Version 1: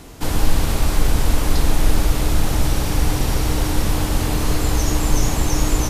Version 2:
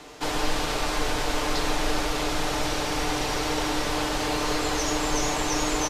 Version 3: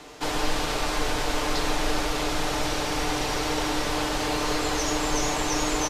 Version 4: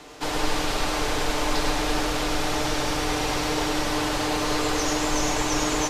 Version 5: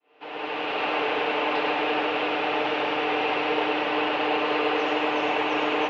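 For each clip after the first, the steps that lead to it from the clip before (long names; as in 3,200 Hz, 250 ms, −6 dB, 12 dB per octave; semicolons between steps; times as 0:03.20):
three-way crossover with the lows and the highs turned down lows −16 dB, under 340 Hz, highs −15 dB, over 7,100 Hz; comb filter 6.7 ms, depth 42%
no processing that can be heard
echo with a time of its own for lows and highs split 310 Hz, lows 162 ms, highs 104 ms, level −6 dB
fade in at the beginning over 0.89 s; loudspeaker in its box 310–3,000 Hz, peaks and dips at 460 Hz +5 dB, 780 Hz +4 dB, 2,700 Hz +9 dB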